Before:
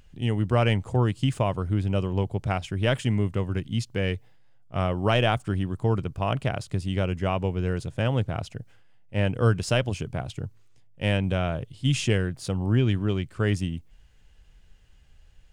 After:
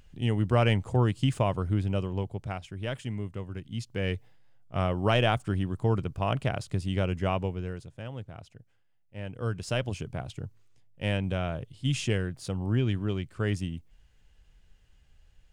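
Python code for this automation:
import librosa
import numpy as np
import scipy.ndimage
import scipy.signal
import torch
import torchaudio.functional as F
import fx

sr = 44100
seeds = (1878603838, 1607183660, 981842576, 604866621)

y = fx.gain(x, sr, db=fx.line((1.7, -1.5), (2.7, -10.0), (3.61, -10.0), (4.15, -2.0), (7.35, -2.0), (7.97, -14.5), (9.19, -14.5), (9.85, -4.5)))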